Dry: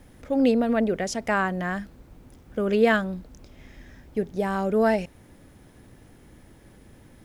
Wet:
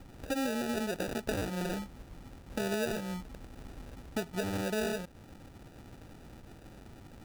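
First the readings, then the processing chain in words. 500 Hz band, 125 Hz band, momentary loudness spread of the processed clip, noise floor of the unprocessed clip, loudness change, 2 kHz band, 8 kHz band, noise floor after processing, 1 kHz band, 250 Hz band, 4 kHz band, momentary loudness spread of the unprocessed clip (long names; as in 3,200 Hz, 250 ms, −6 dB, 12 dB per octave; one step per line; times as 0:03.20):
−11.5 dB, −6.0 dB, 20 LU, −53 dBFS, −10.5 dB, −10.5 dB, can't be measured, −53 dBFS, −12.5 dB, −10.5 dB, −2.5 dB, 13 LU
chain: downward compressor 6 to 1, threshold −31 dBFS, peak gain reduction 16 dB
decimation without filtering 41×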